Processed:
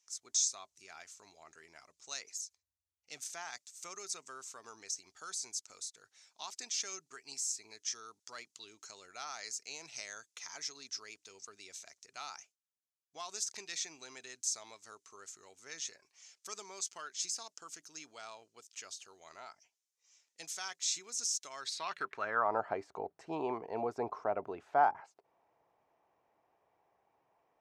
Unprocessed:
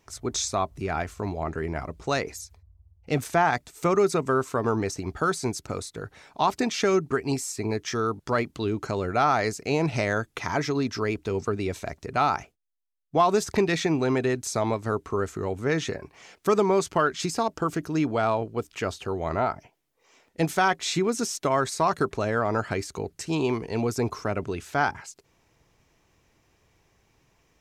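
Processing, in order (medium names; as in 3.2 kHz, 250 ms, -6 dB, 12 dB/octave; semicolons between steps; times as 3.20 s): band-pass sweep 6.4 kHz -> 760 Hz, 21.49–22.58 s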